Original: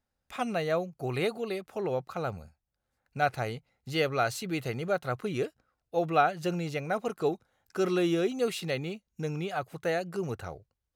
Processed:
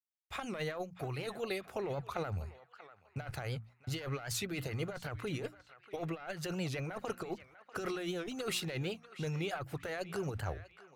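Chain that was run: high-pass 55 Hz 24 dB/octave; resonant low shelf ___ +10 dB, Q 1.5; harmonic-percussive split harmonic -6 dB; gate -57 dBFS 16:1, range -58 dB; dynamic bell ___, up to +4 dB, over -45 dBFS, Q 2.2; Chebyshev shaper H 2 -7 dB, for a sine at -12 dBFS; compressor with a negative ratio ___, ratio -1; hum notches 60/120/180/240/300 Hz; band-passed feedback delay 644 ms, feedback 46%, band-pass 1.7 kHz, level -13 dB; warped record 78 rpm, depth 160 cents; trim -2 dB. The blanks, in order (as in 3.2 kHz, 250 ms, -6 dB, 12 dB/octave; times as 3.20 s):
140 Hz, 1.6 kHz, -36 dBFS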